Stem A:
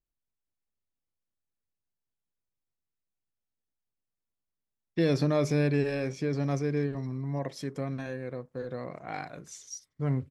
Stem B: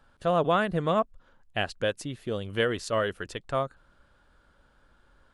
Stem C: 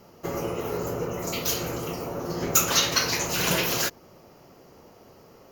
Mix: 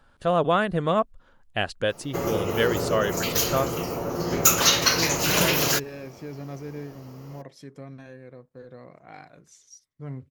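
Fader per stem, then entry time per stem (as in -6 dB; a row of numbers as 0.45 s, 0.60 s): -7.5 dB, +2.5 dB, +3.0 dB; 0.00 s, 0.00 s, 1.90 s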